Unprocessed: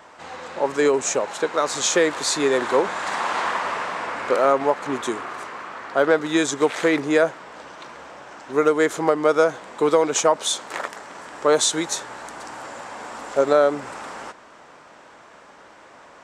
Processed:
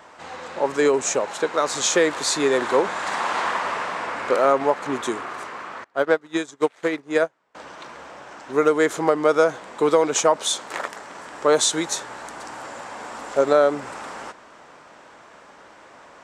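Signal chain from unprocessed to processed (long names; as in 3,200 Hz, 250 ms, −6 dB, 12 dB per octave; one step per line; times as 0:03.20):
0:05.84–0:07.55: expander for the loud parts 2.5 to 1, over −33 dBFS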